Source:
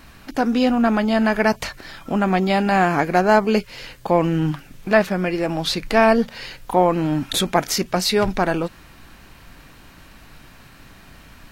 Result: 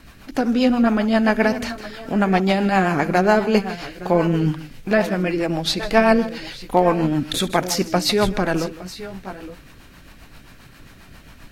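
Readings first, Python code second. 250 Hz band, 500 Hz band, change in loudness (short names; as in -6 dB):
+1.0 dB, 0.0 dB, 0.0 dB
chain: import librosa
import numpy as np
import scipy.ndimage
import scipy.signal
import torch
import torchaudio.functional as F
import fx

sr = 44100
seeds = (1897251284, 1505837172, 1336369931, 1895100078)

y = fx.echo_multitap(x, sr, ms=(68, 156, 864, 880), db=(-19.5, -16.0, -16.5, -17.0))
y = fx.rotary(y, sr, hz=7.5)
y = y * librosa.db_to_amplitude(2.0)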